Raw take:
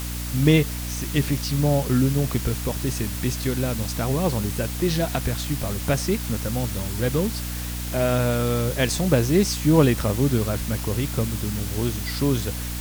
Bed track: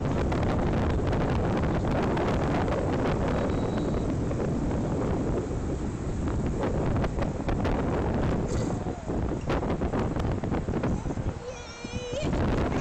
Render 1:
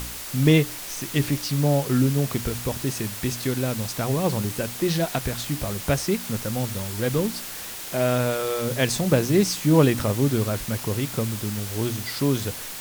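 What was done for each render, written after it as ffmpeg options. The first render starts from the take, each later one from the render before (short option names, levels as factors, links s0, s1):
-af "bandreject=f=60:t=h:w=4,bandreject=f=120:t=h:w=4,bandreject=f=180:t=h:w=4,bandreject=f=240:t=h:w=4,bandreject=f=300:t=h:w=4"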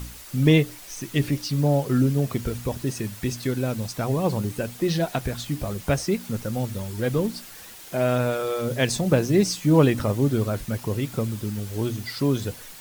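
-af "afftdn=nr=9:nf=-35"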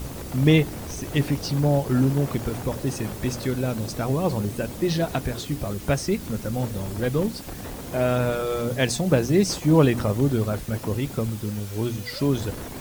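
-filter_complex "[1:a]volume=0.335[s0];[0:a][s0]amix=inputs=2:normalize=0"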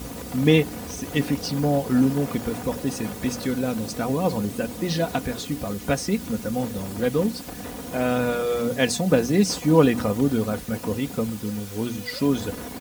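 -af "highpass=73,aecho=1:1:4.1:0.52"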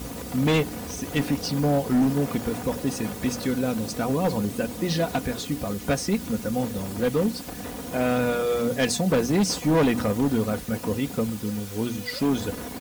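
-af "acrusher=bits=9:mix=0:aa=0.000001,asoftclip=type=hard:threshold=0.15"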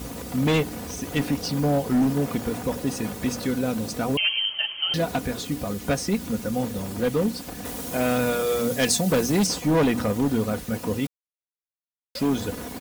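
-filter_complex "[0:a]asettb=1/sr,asplit=3[s0][s1][s2];[s0]atrim=end=4.174[s3];[s1]atrim=start=4.17:end=4.94,asetpts=PTS-STARTPTS,afade=t=in:d=0.004:c=qsin,afade=t=out:st=0.766:d=0.004:c=qsin,lowpass=f=2800:t=q:w=0.5098,lowpass=f=2800:t=q:w=0.6013,lowpass=f=2800:t=q:w=0.9,lowpass=f=2800:t=q:w=2.563,afreqshift=-3300[s4];[s2]atrim=start=4.936[s5];[s3][s4]acrossfade=d=0.004:c1=hsin:c2=qsin[s6];[s6][s5]acrossfade=d=0.004:c1=qsin:c2=hsin,asettb=1/sr,asplit=3[s7][s8][s9];[s7]atrim=end=7.654[s10];[s8]atrim=start=7.65:end=9.47,asetpts=PTS-STARTPTS,afade=t=in:d=0.004:c=qsin,afade=t=out:st=1.816:d=0.004:c=qsin,highshelf=f=4300:g=7.5[s11];[s9]atrim=start=9.466[s12];[s10][s11]acrossfade=d=0.004:c1=hsin:c2=qsin[s13];[s13][s12]acrossfade=d=0.004:c1=qsin:c2=hsin,asplit=3[s14][s15][s16];[s14]atrim=end=11.07,asetpts=PTS-STARTPTS,afade=t=out:st=11.066:d=0.004:c=hsin[s17];[s15]atrim=start=11.07:end=12.15,asetpts=PTS-STARTPTS,volume=0[s18];[s16]atrim=start=12.15,asetpts=PTS-STARTPTS,afade=t=in:d=0.004:c=hsin[s19];[s17][s18][s19]concat=n=3:v=0:a=1"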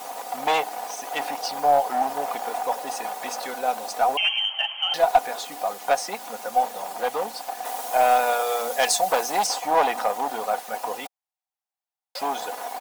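-af "highpass=f=770:t=q:w=6.1,aeval=exprs='0.596*(cos(1*acos(clip(val(0)/0.596,-1,1)))-cos(1*PI/2))+0.0266*(cos(2*acos(clip(val(0)/0.596,-1,1)))-cos(2*PI/2))+0.0119*(cos(5*acos(clip(val(0)/0.596,-1,1)))-cos(5*PI/2))+0.0119*(cos(7*acos(clip(val(0)/0.596,-1,1)))-cos(7*PI/2))':c=same"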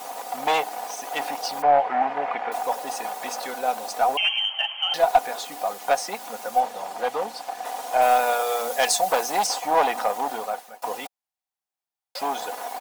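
-filter_complex "[0:a]asettb=1/sr,asplit=3[s0][s1][s2];[s0]atrim=end=1.624[s3];[s1]atrim=start=1.62:end=2.52,asetpts=PTS-STARTPTS,afade=t=in:d=0.004:c=qsin,afade=t=out:st=0.896:d=0.004:c=qsin,lowpass=f=2200:t=q:w=2.2[s4];[s2]atrim=start=2.516[s5];[s3][s4]acrossfade=d=0.004:c1=hsin:c2=qsin[s6];[s6][s5]acrossfade=d=0.004:c1=qsin:c2=hsin,asettb=1/sr,asplit=3[s7][s8][s9];[s7]atrim=end=6.604[s10];[s8]atrim=start=6.6:end=8.02,asetpts=PTS-STARTPTS,afade=t=in:d=0.004:c=qsin,afade=t=out:st=1.416:d=0.004:c=qsin,highshelf=f=10000:g=-10.5[s11];[s9]atrim=start=8.016[s12];[s10][s11]acrossfade=d=0.004:c1=hsin:c2=qsin[s13];[s13][s12]acrossfade=d=0.004:c1=qsin:c2=hsin,asplit=2[s14][s15];[s14]atrim=end=10.82,asetpts=PTS-STARTPTS,afade=t=out:st=10.32:d=0.5:silence=0.0707946[s16];[s15]atrim=start=10.82,asetpts=PTS-STARTPTS,afade=t=in:d=0.004:c=hsin:silence=0.0707946[s17];[s16][s17]concat=n=2:v=0:a=1"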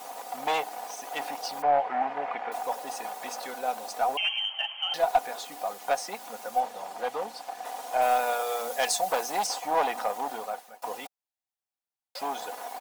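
-af "volume=0.531"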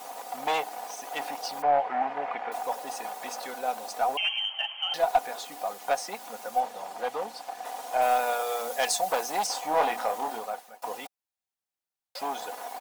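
-filter_complex "[0:a]asettb=1/sr,asplit=3[s0][s1][s2];[s0]atrim=end=9.524[s3];[s1]atrim=start=9.52:end=10.39,asetpts=PTS-STARTPTS,afade=t=in:d=0.004:c=qsin,afade=t=out:st=0.866:d=0.004:c=qsin,asplit=2[s4][s5];[s5]adelay=26,volume=0.531[s6];[s4][s6]amix=inputs=2:normalize=0,atrim=end_sample=38367[s7];[s2]atrim=start=10.386[s8];[s3][s7]acrossfade=d=0.004:c1=hsin:c2=qsin[s9];[s9][s8]acrossfade=d=0.004:c1=qsin:c2=hsin"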